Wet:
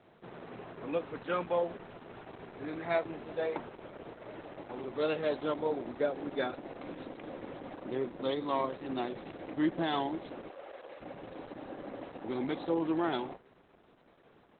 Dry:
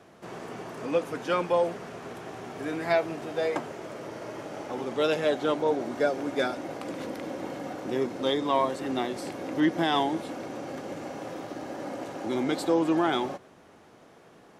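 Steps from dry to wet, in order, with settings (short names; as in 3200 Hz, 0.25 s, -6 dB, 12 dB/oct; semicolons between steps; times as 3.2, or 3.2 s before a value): 10.49–11.01 elliptic band-pass 440–6200 Hz, stop band 50 dB; gain -5.5 dB; Opus 8 kbps 48000 Hz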